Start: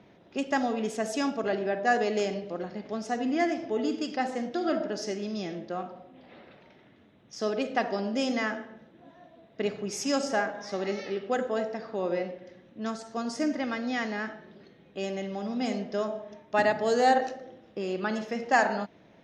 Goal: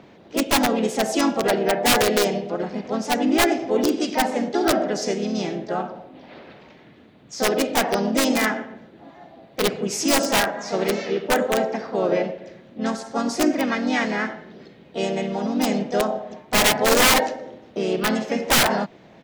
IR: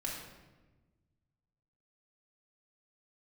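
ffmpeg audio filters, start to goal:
-filter_complex "[0:a]acontrast=83,aeval=exprs='(mod(3.98*val(0)+1,2)-1)/3.98':channel_layout=same,asplit=3[link_01][link_02][link_03];[link_02]asetrate=37084,aresample=44100,atempo=1.18921,volume=-11dB[link_04];[link_03]asetrate=52444,aresample=44100,atempo=0.840896,volume=-5dB[link_05];[link_01][link_04][link_05]amix=inputs=3:normalize=0"

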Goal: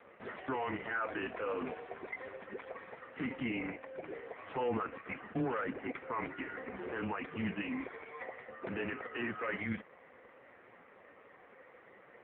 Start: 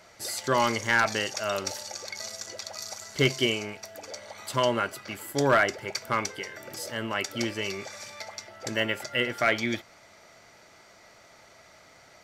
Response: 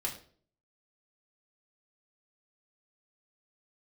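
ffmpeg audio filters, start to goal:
-filter_complex "[0:a]asplit=3[link_01][link_02][link_03];[link_01]afade=type=out:start_time=0.53:duration=0.02[link_04];[link_02]aemphasis=mode=production:type=50kf,afade=type=in:start_time=0.53:duration=0.02,afade=type=out:start_time=0.99:duration=0.02[link_05];[link_03]afade=type=in:start_time=0.99:duration=0.02[link_06];[link_04][link_05][link_06]amix=inputs=3:normalize=0,asettb=1/sr,asplit=3[link_07][link_08][link_09];[link_07]atrim=end=6.464[link_10];[link_08]atrim=start=6.46:end=7.04,asetpts=PTS-STARTPTS,afade=type=in:duration=0.004:curve=qsin,afade=type=out:start_time=0.576:duration=0.004:curve=qsin,aeval=exprs='0.126*(cos(1*acos(clip(val(0)/0.126,-1,1)))-cos(1*PI/2))+0.02*(cos(4*acos(clip(val(0)/0.126,-1,1)))-cos(4*PI/2))+0.00708*(cos(5*acos(clip(val(0)/0.126,-1,1)))-cos(5*PI/2))+0.00891*(cos(6*acos(clip(val(0)/0.126,-1,1)))-cos(6*PI/2))':channel_layout=same[link_11];[link_09]atrim=start=7.036[link_12];[link_10][link_11]acrossfade=duration=0.004:curve1=hsin:curve2=qsin[link_13];[link_13][link_12]acrossfade=duration=0.004:curve1=qsin:curve2=hsin,acrossover=split=230[link_14][link_15];[link_14]acompressor=threshold=-50dB:ratio=8[link_16];[link_16][link_15]amix=inputs=2:normalize=0,asoftclip=type=hard:threshold=-18.5dB,asplit=2[link_17][link_18];[link_18]acrusher=samples=14:mix=1:aa=0.000001,volume=-11.5dB[link_19];[link_17][link_19]amix=inputs=2:normalize=0,asoftclip=type=tanh:threshold=-18dB,highpass=frequency=250:width_type=q:width=0.5412,highpass=frequency=250:width_type=q:width=1.307,lowpass=frequency=2800:width_type=q:width=0.5176,lowpass=frequency=2800:width_type=q:width=0.7071,lowpass=frequency=2800:width_type=q:width=1.932,afreqshift=-130,alimiter=level_in=2dB:limit=-24dB:level=0:latency=1:release=43,volume=-2dB,asettb=1/sr,asplit=3[link_20][link_21][link_22];[link_20]atrim=end=2.764[link_23];[link_21]atrim=start=2.76:end=3.24,asetpts=PTS-STARTPTS,afade=type=in:duration=0.004:curve=qsin,afade=type=out:start_time=0.476:duration=0.004:curve=qsin,equalizer=frequency=750:width_type=o:width=0.29:gain=-4[link_24];[link_22]atrim=start=3.236[link_25];[link_23][link_24]acrossfade=duration=0.004:curve1=hsin:curve2=qsin[link_26];[link_26][link_25]acrossfade=duration=0.004:curve1=qsin:curve2=hsin" -ar 8000 -c:a libopencore_amrnb -b:a 5150

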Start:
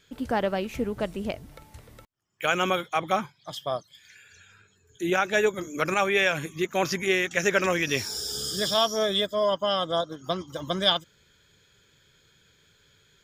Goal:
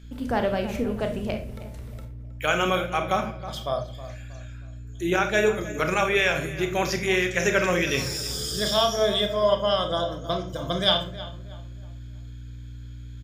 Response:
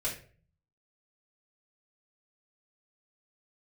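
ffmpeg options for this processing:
-filter_complex "[0:a]aeval=exprs='val(0)+0.00447*(sin(2*PI*60*n/s)+sin(2*PI*2*60*n/s)/2+sin(2*PI*3*60*n/s)/3+sin(2*PI*4*60*n/s)/4+sin(2*PI*5*60*n/s)/5)':channel_layout=same,asplit=2[link_01][link_02];[link_02]adelay=317,lowpass=frequency=2200:poles=1,volume=-14dB,asplit=2[link_03][link_04];[link_04]adelay=317,lowpass=frequency=2200:poles=1,volume=0.38,asplit=2[link_05][link_06];[link_06]adelay=317,lowpass=frequency=2200:poles=1,volume=0.38,asplit=2[link_07][link_08];[link_08]adelay=317,lowpass=frequency=2200:poles=1,volume=0.38[link_09];[link_01][link_03][link_05][link_07][link_09]amix=inputs=5:normalize=0,asplit=2[link_10][link_11];[1:a]atrim=start_sample=2205,lowshelf=frequency=240:gain=6.5,adelay=29[link_12];[link_11][link_12]afir=irnorm=-1:irlink=0,volume=-10dB[link_13];[link_10][link_13]amix=inputs=2:normalize=0"

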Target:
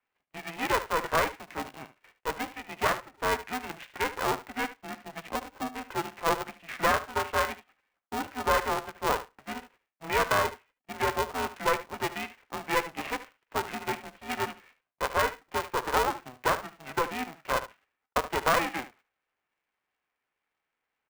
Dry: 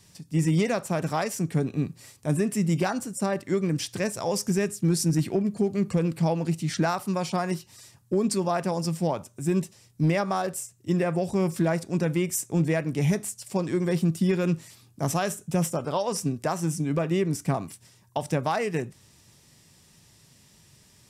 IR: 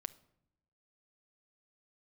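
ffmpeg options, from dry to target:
-filter_complex "[0:a]highpass=frequency=550:width_type=q:width=0.5412,highpass=frequency=550:width_type=q:width=1.307,lowpass=frequency=2300:width_type=q:width=0.5176,lowpass=frequency=2300:width_type=q:width=0.7071,lowpass=frequency=2300:width_type=q:width=1.932,afreqshift=110,asplit=2[link_01][link_02];[link_02]aeval=exprs='val(0)*gte(abs(val(0)),0.00668)':channel_layout=same,volume=-7dB[link_03];[link_01][link_03]amix=inputs=2:normalize=0,agate=range=-16dB:threshold=-57dB:ratio=16:detection=peak,aecho=1:1:74:0.2,aeval=exprs='val(0)*sgn(sin(2*PI*250*n/s))':channel_layout=same"

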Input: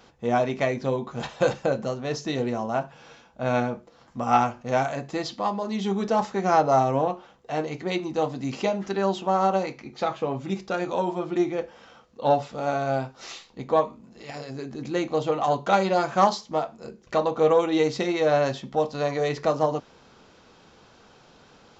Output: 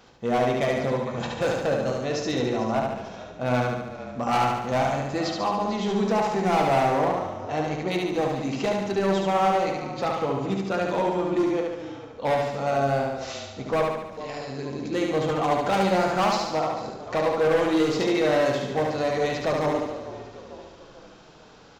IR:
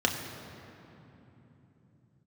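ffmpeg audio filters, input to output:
-filter_complex "[0:a]asplit=2[link_01][link_02];[link_02]asplit=4[link_03][link_04][link_05][link_06];[link_03]adelay=447,afreqshift=-36,volume=-17dB[link_07];[link_04]adelay=894,afreqshift=-72,volume=-22.8dB[link_08];[link_05]adelay=1341,afreqshift=-108,volume=-28.7dB[link_09];[link_06]adelay=1788,afreqshift=-144,volume=-34.5dB[link_10];[link_07][link_08][link_09][link_10]amix=inputs=4:normalize=0[link_11];[link_01][link_11]amix=inputs=2:normalize=0,volume=20dB,asoftclip=hard,volume=-20dB,asplit=2[link_12][link_13];[link_13]aecho=0:1:72|144|216|288|360|432|504|576:0.708|0.411|0.238|0.138|0.0801|0.0465|0.027|0.0156[link_14];[link_12][link_14]amix=inputs=2:normalize=0"

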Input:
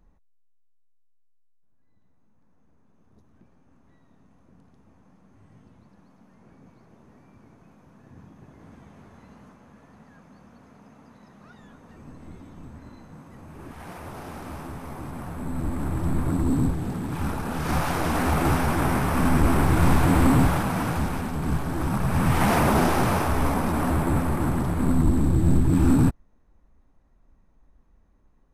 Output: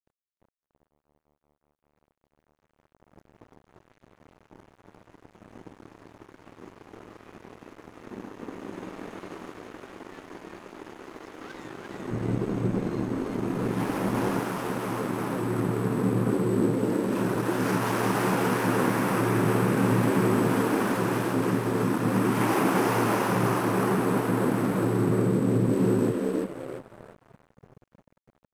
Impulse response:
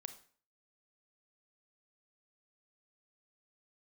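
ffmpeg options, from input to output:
-filter_complex "[0:a]acompressor=threshold=-40dB:ratio=3,afreqshift=110,asplit=6[link_01][link_02][link_03][link_04][link_05][link_06];[link_02]adelay=345,afreqshift=75,volume=-3.5dB[link_07];[link_03]adelay=690,afreqshift=150,volume=-11.2dB[link_08];[link_04]adelay=1035,afreqshift=225,volume=-19dB[link_09];[link_05]adelay=1380,afreqshift=300,volume=-26.7dB[link_10];[link_06]adelay=1725,afreqshift=375,volume=-34.5dB[link_11];[link_01][link_07][link_08][link_09][link_10][link_11]amix=inputs=6:normalize=0,acontrast=49,equalizer=frequency=3900:width_type=o:width=0.37:gain=-3.5,aeval=exprs='sgn(val(0))*max(abs(val(0))-0.00562,0)':channel_layout=same,asettb=1/sr,asplit=3[link_12][link_13][link_14];[link_12]atrim=end=12.114[link_15];[link_13]atrim=start=12.11:end=14.4,asetpts=PTS-STARTPTS,afade=type=in:duration=0.004:curve=qsin,afade=type=out:start_time=2.286:duration=0.004:curve=qsin,lowshelf=frequency=310:gain=10.5[link_16];[link_14]atrim=start=14.396[link_17];[link_15][link_16]acrossfade=duration=0.004:curve1=hsin:curve2=qsin[link_18];[link_18][link_17]acrossfade=duration=0.004:curve1=qsin:curve2=hsin,volume=6dB"

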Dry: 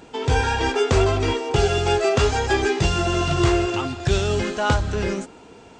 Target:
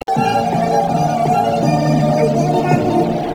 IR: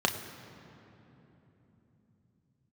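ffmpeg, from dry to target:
-filter_complex "[0:a]highpass=frequency=110:poles=1,lowshelf=frequency=540:width_type=q:width=3:gain=7,areverse,acompressor=threshold=-20dB:ratio=10,areverse,asplit=2[link_01][link_02];[link_02]adelay=1283,volume=-12dB,highshelf=frequency=4000:gain=-28.9[link_03];[link_01][link_03]amix=inputs=2:normalize=0[link_04];[1:a]atrim=start_sample=2205,asetrate=57330,aresample=44100[link_05];[link_04][link_05]afir=irnorm=-1:irlink=0,acrusher=bits=3:mix=0:aa=0.000001,afftdn=noise_reduction=18:noise_floor=-25,acompressor=mode=upward:threshold=-17dB:ratio=2.5,asetrate=76440,aresample=44100,bass=frequency=250:gain=10,treble=frequency=4000:gain=0,volume=-1.5dB"

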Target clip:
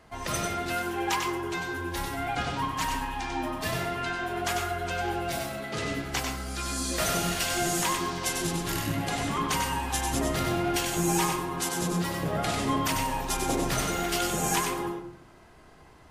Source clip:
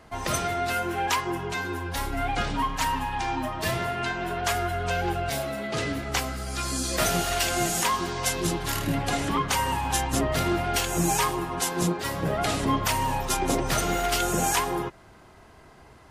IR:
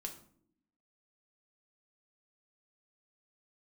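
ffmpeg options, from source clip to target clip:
-filter_complex "[0:a]bandreject=frequency=46.71:width_type=h:width=4,bandreject=frequency=93.42:width_type=h:width=4,bandreject=frequency=140.13:width_type=h:width=4,bandreject=frequency=186.84:width_type=h:width=4,bandreject=frequency=233.55:width_type=h:width=4,bandreject=frequency=280.26:width_type=h:width=4,bandreject=frequency=326.97:width_type=h:width=4,bandreject=frequency=373.68:width_type=h:width=4,bandreject=frequency=420.39:width_type=h:width=4,bandreject=frequency=467.1:width_type=h:width=4,bandreject=frequency=513.81:width_type=h:width=4,bandreject=frequency=560.52:width_type=h:width=4,bandreject=frequency=607.23:width_type=h:width=4,bandreject=frequency=653.94:width_type=h:width=4,bandreject=frequency=700.65:width_type=h:width=4,bandreject=frequency=747.36:width_type=h:width=4,bandreject=frequency=794.07:width_type=h:width=4,bandreject=frequency=840.78:width_type=h:width=4,bandreject=frequency=887.49:width_type=h:width=4,bandreject=frequency=934.2:width_type=h:width=4,bandreject=frequency=980.91:width_type=h:width=4,bandreject=frequency=1027.62:width_type=h:width=4,bandreject=frequency=1074.33:width_type=h:width=4,bandreject=frequency=1121.04:width_type=h:width=4,bandreject=frequency=1167.75:width_type=h:width=4,bandreject=frequency=1214.46:width_type=h:width=4,bandreject=frequency=1261.17:width_type=h:width=4,bandreject=frequency=1307.88:width_type=h:width=4,bandreject=frequency=1354.59:width_type=h:width=4,bandreject=frequency=1401.3:width_type=h:width=4,bandreject=frequency=1448.01:width_type=h:width=4,bandreject=frequency=1494.72:width_type=h:width=4,asplit=2[link_01][link_02];[1:a]atrim=start_sample=2205,adelay=95[link_03];[link_02][link_03]afir=irnorm=-1:irlink=0,volume=-1dB[link_04];[link_01][link_04]amix=inputs=2:normalize=0,volume=-3.5dB"

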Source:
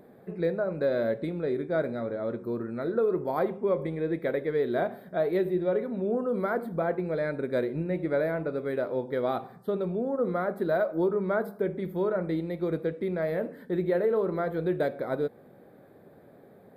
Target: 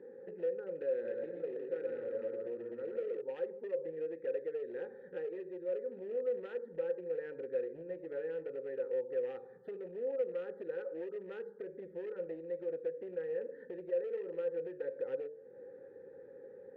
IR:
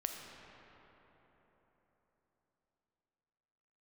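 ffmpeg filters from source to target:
-filter_complex "[0:a]asubboost=boost=4:cutoff=91,asuperstop=centerf=650:order=8:qfactor=2.4,highshelf=frequency=1700:width_type=q:width=1.5:gain=-12,asettb=1/sr,asplit=3[link_01][link_02][link_03];[link_01]atrim=end=0.934[link_04];[link_02]atrim=start=0.93:end=3.22,asetpts=PTS-STARTPTS,afade=type=in:duration=0.004:curve=qsin,afade=type=out:start_time=2.286:duration=0.004:curve=qsin,aecho=1:1:120|198|248.7|281.7|303.1:0.631|0.398|0.251|0.158|0.1,atrim=end_sample=100989[link_05];[link_03]atrim=start=3.216[link_06];[link_04][link_05]acrossfade=duration=0.004:curve1=hsin:curve2=qsin[link_07];[link_07][link_06]acrossfade=duration=0.004:curve1=qsin:curve2=hsin,acompressor=threshold=-44dB:ratio=3,asoftclip=type=hard:threshold=-38.5dB,asplit=3[link_08][link_09][link_10];[link_08]bandpass=frequency=530:width_type=q:width=8,volume=0dB[link_11];[link_09]bandpass=frequency=1840:width_type=q:width=8,volume=-6dB[link_12];[link_10]bandpass=frequency=2480:width_type=q:width=8,volume=-9dB[link_13];[link_11][link_12][link_13]amix=inputs=3:normalize=0,bandreject=frequency=149:width_type=h:width=4,bandreject=frequency=298:width_type=h:width=4,bandreject=frequency=447:width_type=h:width=4,bandreject=frequency=596:width_type=h:width=4,volume=13dB"

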